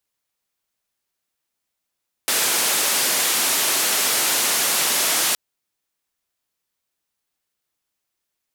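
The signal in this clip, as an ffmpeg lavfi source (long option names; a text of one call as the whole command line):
ffmpeg -f lavfi -i "anoisesrc=color=white:duration=3.07:sample_rate=44100:seed=1,highpass=frequency=260,lowpass=frequency=13000,volume=-12.8dB" out.wav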